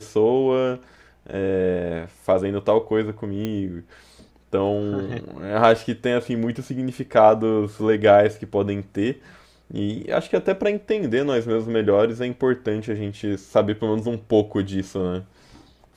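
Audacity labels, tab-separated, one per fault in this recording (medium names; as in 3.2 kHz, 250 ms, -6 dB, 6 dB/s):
3.450000	3.450000	pop -14 dBFS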